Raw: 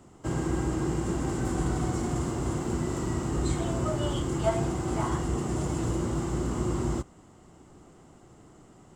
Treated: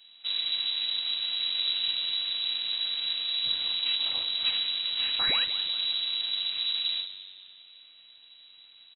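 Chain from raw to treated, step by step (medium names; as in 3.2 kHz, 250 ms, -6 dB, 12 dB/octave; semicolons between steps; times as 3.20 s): on a send at -1.5 dB: reverberation, pre-delay 3 ms; on the sum: painted sound fall, 5.19–5.45 s, 930–3000 Hz -24 dBFS; full-wave rectifier; frequency-shifting echo 178 ms, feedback 53%, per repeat +95 Hz, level -16 dB; frequency inversion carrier 3.9 kHz; trim -4 dB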